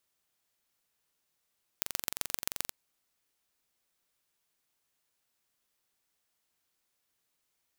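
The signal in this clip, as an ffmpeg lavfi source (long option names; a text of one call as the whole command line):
ffmpeg -f lavfi -i "aevalsrc='0.75*eq(mod(n,1926),0)*(0.5+0.5*eq(mod(n,5778),0))':duration=0.9:sample_rate=44100" out.wav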